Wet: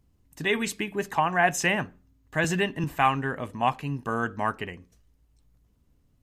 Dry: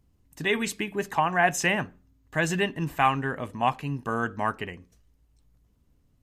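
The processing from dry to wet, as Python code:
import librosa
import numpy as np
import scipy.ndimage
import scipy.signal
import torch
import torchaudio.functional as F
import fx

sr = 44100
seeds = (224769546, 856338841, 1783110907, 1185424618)

y = fx.band_squash(x, sr, depth_pct=40, at=(2.44, 2.84))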